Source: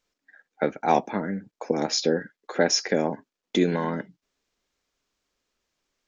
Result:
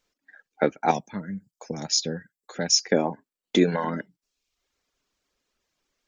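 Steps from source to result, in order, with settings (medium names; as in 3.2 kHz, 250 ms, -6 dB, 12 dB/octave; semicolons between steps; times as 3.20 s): reverb removal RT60 0.66 s; 0.91–2.92 s: FFT filter 160 Hz 0 dB, 320 Hz -13 dB, 2.3 kHz -9 dB, 7.3 kHz +4 dB; trim +2.5 dB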